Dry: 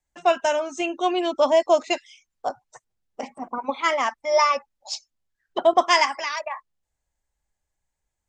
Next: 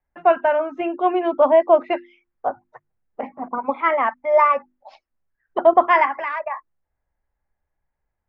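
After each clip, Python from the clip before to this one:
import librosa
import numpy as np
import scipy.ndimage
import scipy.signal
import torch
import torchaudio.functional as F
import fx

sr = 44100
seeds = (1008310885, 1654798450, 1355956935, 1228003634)

y = scipy.signal.sosfilt(scipy.signal.butter(4, 2000.0, 'lowpass', fs=sr, output='sos'), x)
y = fx.hum_notches(y, sr, base_hz=50, count=7)
y = y * 10.0 ** (4.0 / 20.0)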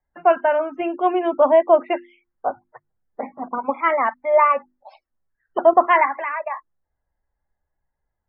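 y = fx.spec_topn(x, sr, count=64)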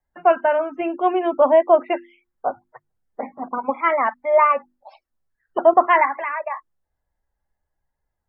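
y = fx.wow_flutter(x, sr, seeds[0], rate_hz=2.1, depth_cents=23.0)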